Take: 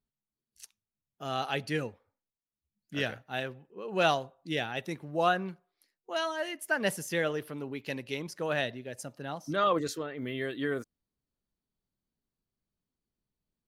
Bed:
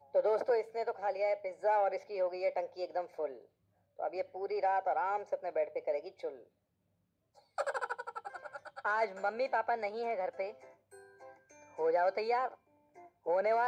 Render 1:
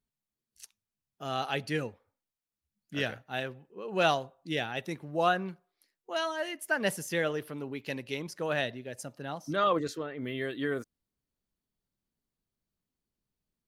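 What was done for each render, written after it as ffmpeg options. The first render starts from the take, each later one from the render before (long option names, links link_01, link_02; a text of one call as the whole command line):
ffmpeg -i in.wav -filter_complex "[0:a]asettb=1/sr,asplit=3[link_01][link_02][link_03];[link_01]atrim=end=9.774[link_04];[link_02]atrim=start=9.77:end=10.24,asetpts=PTS-STARTPTS,afade=type=in:duration=0.004:curve=qsin,afade=type=out:start_time=0.466:duration=0.004:curve=qsin,highshelf=frequency=5300:gain=-8[link_05];[link_03]atrim=start=10.236[link_06];[link_04][link_05]acrossfade=duration=0.004:curve1=hsin:curve2=qsin[link_07];[link_07][link_06]acrossfade=duration=0.004:curve1=qsin:curve2=hsin" out.wav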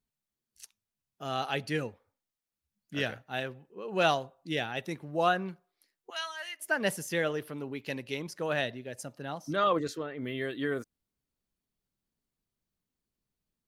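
ffmpeg -i in.wav -filter_complex "[0:a]asettb=1/sr,asplit=3[link_01][link_02][link_03];[link_01]atrim=end=6.104[link_04];[link_02]atrim=start=6.1:end=6.6,asetpts=PTS-STARTPTS,afade=type=in:duration=0.004:curve=qsin,afade=type=out:start_time=0.496:duration=0.004:curve=qsin,highpass=1400[link_05];[link_03]atrim=start=6.596[link_06];[link_04][link_05]acrossfade=duration=0.004:curve1=hsin:curve2=qsin[link_07];[link_07][link_06]acrossfade=duration=0.004:curve1=qsin:curve2=hsin" out.wav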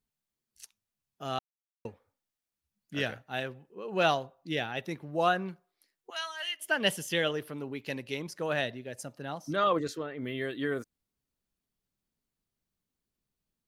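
ffmpeg -i in.wav -filter_complex "[0:a]asettb=1/sr,asplit=3[link_01][link_02][link_03];[link_01]atrim=end=3.944[link_04];[link_02]atrim=start=3.94:end=5.12,asetpts=PTS-STARTPTS,afade=type=in:duration=0.004:curve=qsin,afade=type=out:start_time=1.176:duration=0.004:curve=qsin,equalizer=frequency=8500:width=1.5:gain=-5.5[link_05];[link_03]atrim=start=5.116[link_06];[link_04][link_05]acrossfade=duration=0.004:curve1=hsin:curve2=qsin[link_07];[link_07][link_06]acrossfade=duration=0.004:curve1=qsin:curve2=hsin,asettb=1/sr,asplit=3[link_08][link_09][link_10];[link_08]atrim=end=6.404[link_11];[link_09]atrim=start=6.4:end=7.31,asetpts=PTS-STARTPTS,afade=type=in:duration=0.004:curve=qsin,afade=type=out:start_time=0.906:duration=0.004:curve=qsin,equalizer=frequency=3100:width=4.1:gain=13.5[link_12];[link_10]atrim=start=7.306[link_13];[link_11][link_12]acrossfade=duration=0.004:curve1=hsin:curve2=qsin[link_14];[link_14][link_13]acrossfade=duration=0.004:curve1=qsin:curve2=hsin,asplit=3[link_15][link_16][link_17];[link_15]atrim=end=1.39,asetpts=PTS-STARTPTS,afade=type=out:start_time=1.386:duration=0.004:curve=hsin[link_18];[link_16]atrim=start=1.39:end=1.85,asetpts=PTS-STARTPTS,volume=0[link_19];[link_17]atrim=start=1.85,asetpts=PTS-STARTPTS,afade=type=in:duration=0.004:curve=hsin[link_20];[link_18][link_19][link_20]concat=n=3:v=0:a=1" out.wav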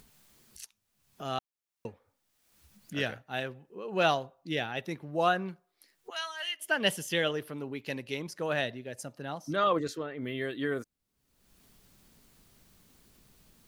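ffmpeg -i in.wav -af "acompressor=mode=upward:threshold=-40dB:ratio=2.5" out.wav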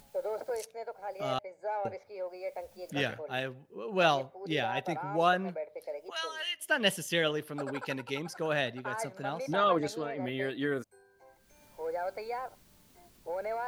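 ffmpeg -i in.wav -i bed.wav -filter_complex "[1:a]volume=-5dB[link_01];[0:a][link_01]amix=inputs=2:normalize=0" out.wav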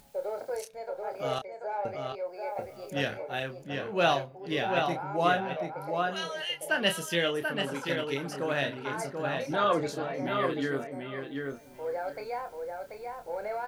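ffmpeg -i in.wav -filter_complex "[0:a]asplit=2[link_01][link_02];[link_02]adelay=29,volume=-7dB[link_03];[link_01][link_03]amix=inputs=2:normalize=0,asplit=2[link_04][link_05];[link_05]adelay=736,lowpass=frequency=3400:poles=1,volume=-4dB,asplit=2[link_06][link_07];[link_07]adelay=736,lowpass=frequency=3400:poles=1,volume=0.17,asplit=2[link_08][link_09];[link_09]adelay=736,lowpass=frequency=3400:poles=1,volume=0.17[link_10];[link_04][link_06][link_08][link_10]amix=inputs=4:normalize=0" out.wav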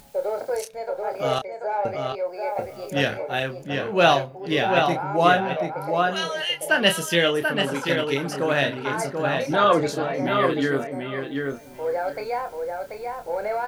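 ffmpeg -i in.wav -af "volume=8dB" out.wav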